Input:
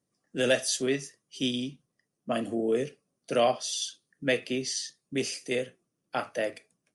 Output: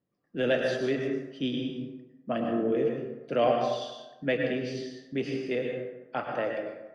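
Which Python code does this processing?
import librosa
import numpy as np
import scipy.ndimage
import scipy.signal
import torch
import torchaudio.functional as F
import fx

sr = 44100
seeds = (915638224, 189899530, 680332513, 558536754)

y = fx.air_absorb(x, sr, metres=330.0)
y = fx.rev_plate(y, sr, seeds[0], rt60_s=1.1, hf_ratio=0.5, predelay_ms=90, drr_db=1.5)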